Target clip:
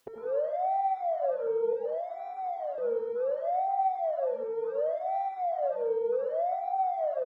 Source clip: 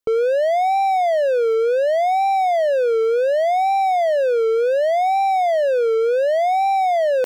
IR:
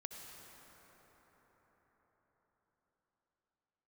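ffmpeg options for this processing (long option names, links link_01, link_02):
-filter_complex "[0:a]asetnsamples=nb_out_samples=441:pad=0,asendcmd='1.73 highpass f 990;2.78 highpass f 260',highpass=frequency=140:poles=1,afwtdn=0.0631,highshelf=frequency=5000:gain=-9,acompressor=mode=upward:threshold=-24dB:ratio=2.5[link_01];[1:a]atrim=start_sample=2205,afade=type=out:start_time=0.31:duration=0.01,atrim=end_sample=14112[link_02];[link_01][link_02]afir=irnorm=-1:irlink=0,asplit=2[link_03][link_04];[link_04]adelay=5.6,afreqshift=0.95[link_05];[link_03][link_05]amix=inputs=2:normalize=1,volume=-4.5dB"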